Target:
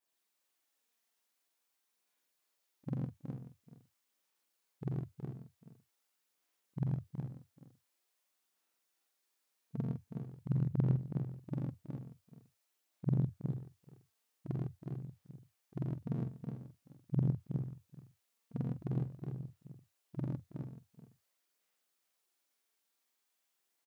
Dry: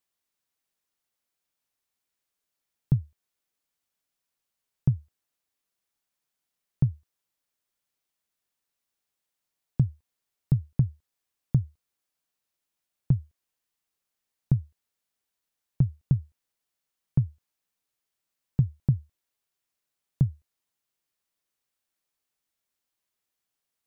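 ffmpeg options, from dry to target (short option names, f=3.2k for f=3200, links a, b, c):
-filter_complex "[0:a]afftfilt=real='re':imag='-im':win_size=4096:overlap=0.75,asplit=2[a][b];[b]aecho=0:1:430:0.178[c];[a][c]amix=inputs=2:normalize=0,aphaser=in_gain=1:out_gain=1:delay=4.5:decay=0.42:speed=0.46:type=sinusoidal,highpass=260,asplit=2[d][e];[e]aecho=0:1:84|109|369|397|446:0.596|0.708|0.562|0.316|0.188[f];[d][f]amix=inputs=2:normalize=0,volume=2.5dB"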